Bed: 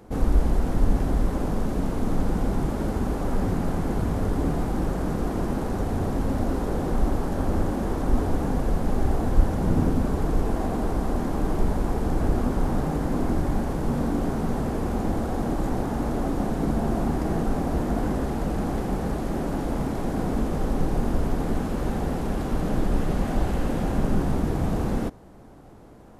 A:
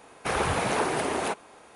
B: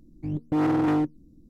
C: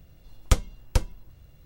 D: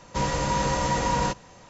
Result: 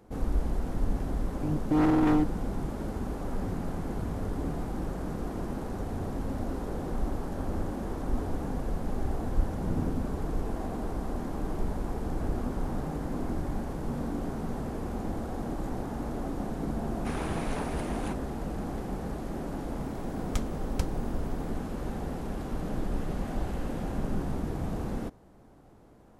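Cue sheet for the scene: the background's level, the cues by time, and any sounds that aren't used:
bed −8 dB
0:01.19: mix in B −1 dB
0:16.80: mix in A −12 dB
0:19.84: mix in C −7 dB + brickwall limiter −9 dBFS
not used: D

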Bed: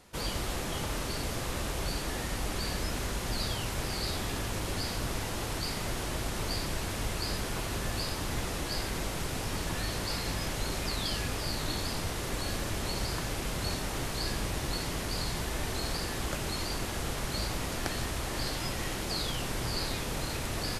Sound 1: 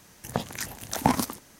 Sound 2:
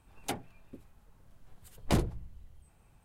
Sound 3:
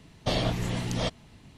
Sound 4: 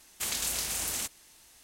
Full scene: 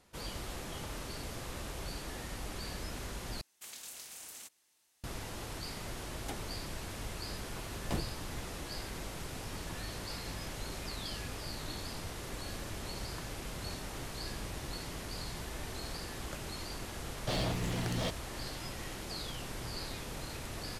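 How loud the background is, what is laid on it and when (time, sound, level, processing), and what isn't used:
bed −8 dB
0:03.41: overwrite with 4 −15.5 dB + high-pass filter 250 Hz 6 dB per octave
0:06.00: mix in 2 −8.5 dB
0:17.01: mix in 3 −14.5 dB + leveller curve on the samples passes 3
not used: 1

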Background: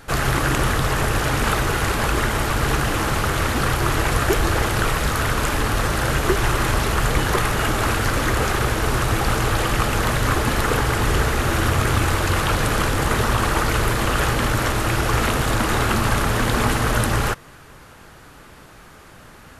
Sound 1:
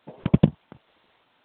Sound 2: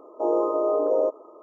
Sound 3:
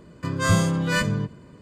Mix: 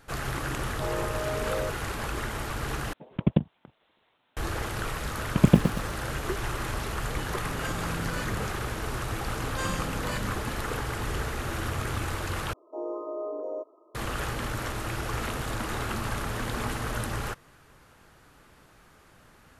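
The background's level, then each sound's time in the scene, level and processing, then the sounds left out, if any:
background −12 dB
0:00.60: mix in 2 −8 dB + low-shelf EQ 260 Hz −11.5 dB
0:02.93: overwrite with 1 −5.5 dB
0:05.10: mix in 1 −0.5 dB + feedback echo at a low word length 116 ms, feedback 35%, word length 6 bits, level −7 dB
0:07.22: mix in 3 −1 dB + downward compressor, threshold −33 dBFS
0:09.16: mix in 3 −15 dB + comb filter 3.8 ms, depth 92%
0:12.53: overwrite with 2 −12.5 dB + comb filter 3 ms, depth 35%

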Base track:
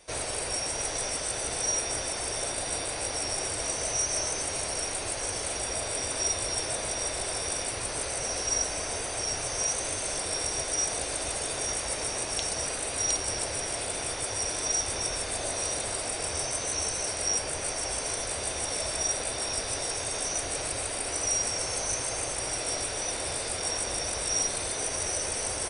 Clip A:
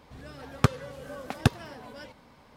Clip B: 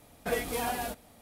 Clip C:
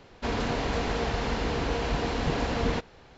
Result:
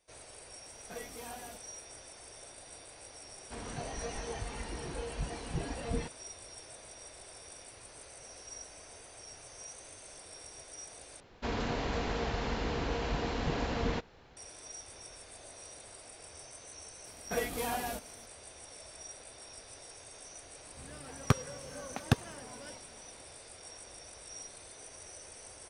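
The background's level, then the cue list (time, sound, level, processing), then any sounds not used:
base track −19 dB
0:00.64: mix in B −14 dB
0:03.28: mix in C −6 dB + noise reduction from a noise print of the clip's start 9 dB
0:11.20: overwrite with C −5.5 dB
0:17.05: mix in B −3 dB
0:20.66: mix in A −5 dB

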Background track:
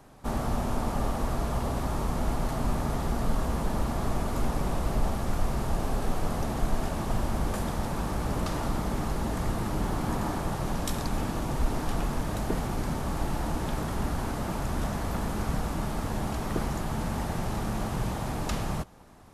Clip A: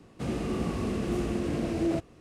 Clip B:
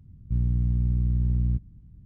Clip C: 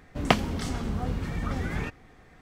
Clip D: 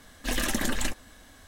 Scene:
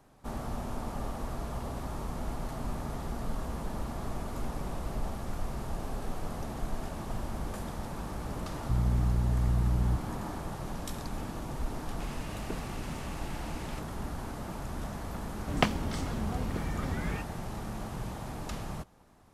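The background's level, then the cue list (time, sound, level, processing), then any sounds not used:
background track −7.5 dB
0:08.39: mix in B −0.5 dB + brickwall limiter −19.5 dBFS
0:11.80: mix in A −3.5 dB + high-pass filter 1,400 Hz 24 dB per octave
0:15.32: mix in C −4.5 dB
not used: D

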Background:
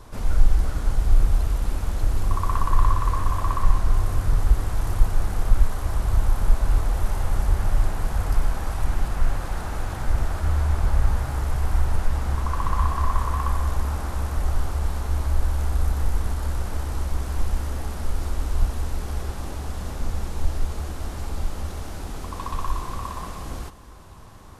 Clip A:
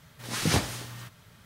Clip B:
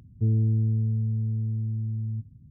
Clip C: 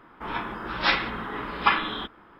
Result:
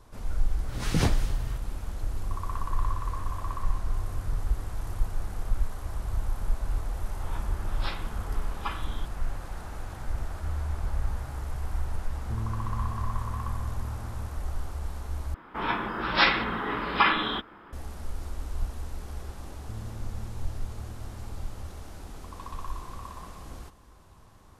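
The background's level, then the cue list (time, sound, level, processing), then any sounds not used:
background −9.5 dB
0:00.49: mix in A −2.5 dB + spectral tilt −1.5 dB per octave
0:06.99: mix in C −12 dB + parametric band 2,000 Hz −7 dB
0:12.08: mix in B −11.5 dB
0:15.34: overwrite with C −7.5 dB + boost into a limiter +10 dB
0:19.47: mix in B −18 dB

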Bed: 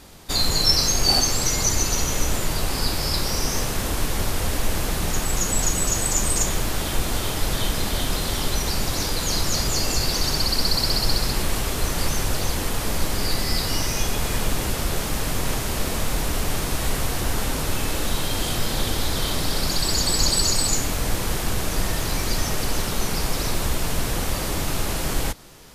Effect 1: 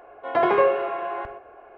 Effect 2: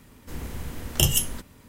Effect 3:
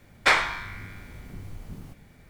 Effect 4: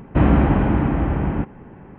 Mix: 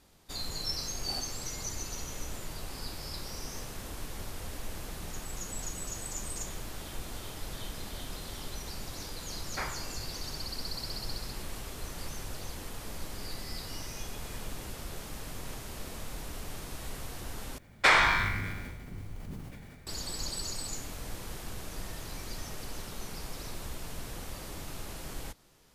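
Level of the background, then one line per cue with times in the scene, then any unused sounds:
bed −16.5 dB
0:09.31: mix in 3 −13.5 dB + Bessel low-pass filter 1,400 Hz
0:17.58: overwrite with 3 −3 dB + level that may fall only so fast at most 27 dB per second
not used: 1, 2, 4

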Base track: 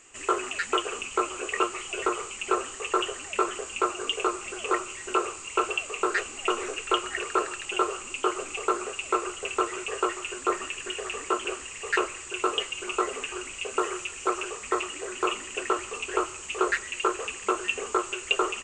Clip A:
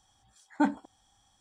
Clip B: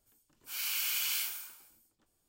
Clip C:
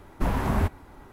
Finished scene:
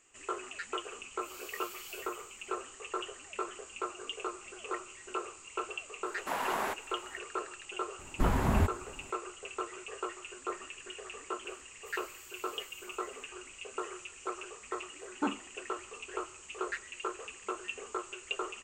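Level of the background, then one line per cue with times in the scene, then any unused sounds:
base track −11.5 dB
0:00.75: mix in B −16.5 dB
0:06.06: mix in C −0.5 dB + high-pass filter 660 Hz
0:07.99: mix in C −3 dB
0:11.39: mix in B −12 dB + downward compressor, threshold −42 dBFS
0:14.62: mix in A −8 dB

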